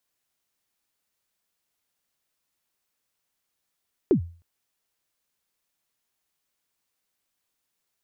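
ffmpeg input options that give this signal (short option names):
-f lavfi -i "aevalsrc='0.251*pow(10,-3*t/0.39)*sin(2*PI*(430*0.097/log(85/430)*(exp(log(85/430)*min(t,0.097)/0.097)-1)+85*max(t-0.097,0)))':d=0.31:s=44100"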